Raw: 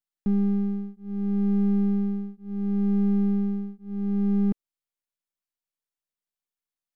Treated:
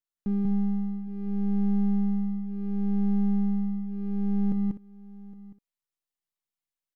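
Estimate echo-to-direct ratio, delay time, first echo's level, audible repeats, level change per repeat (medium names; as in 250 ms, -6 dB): -1.5 dB, 49 ms, -17.5 dB, 6, no regular repeats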